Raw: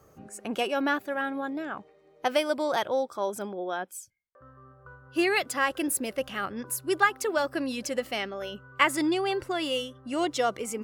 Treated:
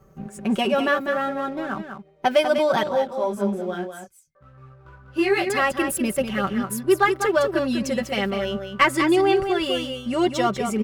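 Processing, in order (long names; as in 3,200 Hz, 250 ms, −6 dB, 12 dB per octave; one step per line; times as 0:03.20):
bass and treble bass +11 dB, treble −5 dB
comb filter 5.2 ms, depth 71%
leveller curve on the samples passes 1
single-tap delay 197 ms −7.5 dB
0:02.89–0:05.50: micro pitch shift up and down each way 16 cents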